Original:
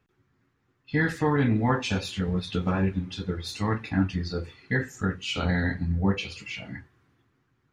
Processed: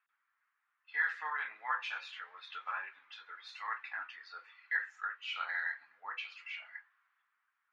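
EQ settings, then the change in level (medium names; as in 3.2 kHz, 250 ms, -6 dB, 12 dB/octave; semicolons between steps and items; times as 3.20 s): high-pass 1.2 kHz 24 dB/octave; low-pass 1.8 kHz 12 dB/octave; 0.0 dB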